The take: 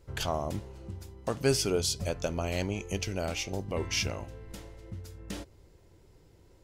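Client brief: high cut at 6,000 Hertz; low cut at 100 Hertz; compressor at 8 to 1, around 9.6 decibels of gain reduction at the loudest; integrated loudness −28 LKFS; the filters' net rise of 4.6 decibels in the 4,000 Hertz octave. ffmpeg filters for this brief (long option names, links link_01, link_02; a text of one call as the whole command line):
ffmpeg -i in.wav -af "highpass=100,lowpass=6000,equalizer=frequency=4000:width_type=o:gain=7.5,acompressor=threshold=-30dB:ratio=8,volume=8.5dB" out.wav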